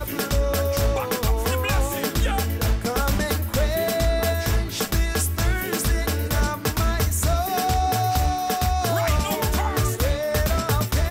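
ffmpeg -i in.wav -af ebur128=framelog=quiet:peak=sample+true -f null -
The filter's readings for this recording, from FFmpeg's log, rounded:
Integrated loudness:
  I:         -23.0 LUFS
  Threshold: -33.0 LUFS
Loudness range:
  LRA:         1.0 LU
  Threshold: -43.0 LUFS
  LRA low:   -23.4 LUFS
  LRA high:  -22.4 LUFS
Sample peak:
  Peak:      -13.1 dBFS
True peak:
  Peak:      -12.2 dBFS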